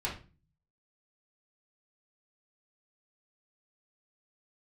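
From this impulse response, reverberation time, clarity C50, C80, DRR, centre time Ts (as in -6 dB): 0.35 s, 7.5 dB, 14.0 dB, -5.5 dB, 25 ms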